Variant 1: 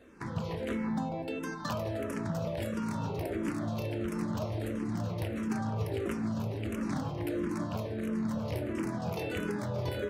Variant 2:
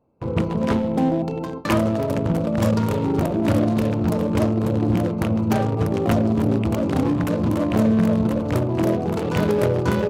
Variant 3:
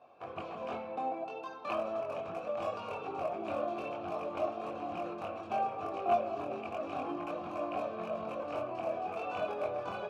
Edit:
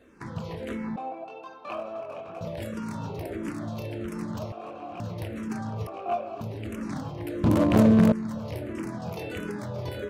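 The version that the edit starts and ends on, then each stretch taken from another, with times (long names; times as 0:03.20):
1
0:00.96–0:02.41: punch in from 3
0:04.52–0:05.00: punch in from 3
0:05.87–0:06.41: punch in from 3
0:07.44–0:08.12: punch in from 2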